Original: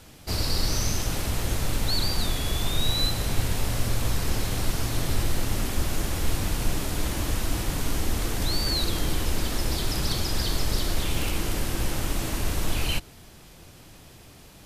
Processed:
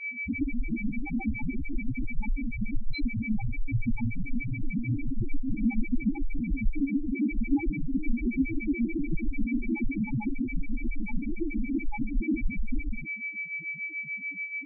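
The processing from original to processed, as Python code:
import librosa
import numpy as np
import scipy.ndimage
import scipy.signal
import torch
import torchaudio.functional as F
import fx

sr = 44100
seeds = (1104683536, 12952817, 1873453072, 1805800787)

p1 = fx.self_delay(x, sr, depth_ms=0.14)
p2 = np.clip(10.0 ** (30.5 / 20.0) * p1, -1.0, 1.0) / 10.0 ** (30.5 / 20.0)
p3 = p1 + (p2 * librosa.db_to_amplitude(-6.0))
p4 = fx.peak_eq(p3, sr, hz=430.0, db=3.5, octaves=2.2)
p5 = fx.rev_gated(p4, sr, seeds[0], gate_ms=80, shape='flat', drr_db=7.5)
p6 = fx.vibrato(p5, sr, rate_hz=2.1, depth_cents=51.0)
p7 = p6 + 10.0 ** (-29.0 / 20.0) * np.sin(2.0 * np.pi * 2300.0 * np.arange(len(p6)) / sr)
p8 = fx.high_shelf(p7, sr, hz=4200.0, db=-8.0)
p9 = fx.small_body(p8, sr, hz=(250.0, 840.0, 1300.0), ring_ms=20, db=15)
p10 = fx.harmonic_tremolo(p9, sr, hz=6.9, depth_pct=70, crossover_hz=750.0)
y = fx.spec_topn(p10, sr, count=2)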